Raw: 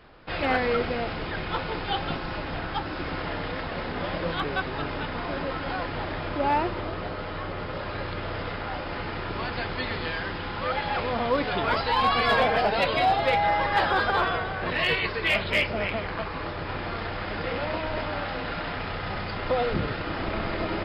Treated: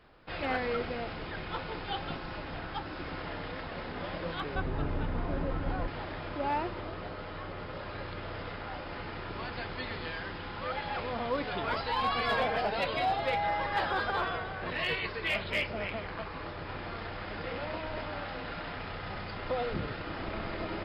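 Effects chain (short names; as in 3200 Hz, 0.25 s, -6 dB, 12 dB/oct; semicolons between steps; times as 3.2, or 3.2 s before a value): 4.55–5.88 tilt -3 dB/oct; gain -7.5 dB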